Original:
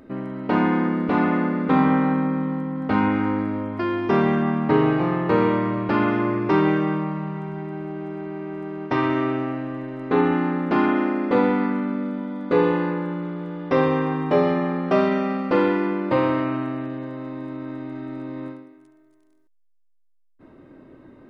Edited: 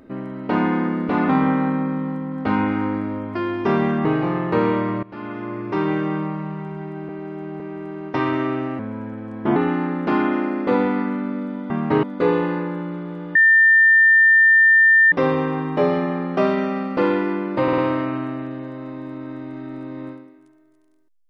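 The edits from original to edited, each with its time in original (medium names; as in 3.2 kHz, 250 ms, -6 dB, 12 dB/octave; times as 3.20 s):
1.29–1.73 s: delete
4.49–4.82 s: move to 12.34 s
5.80–6.99 s: fade in, from -20 dB
7.86–8.37 s: reverse
9.56–10.20 s: speed 83%
13.66 s: add tone 1.8 kHz -9.5 dBFS 1.77 s
16.17 s: stutter 0.05 s, 4 plays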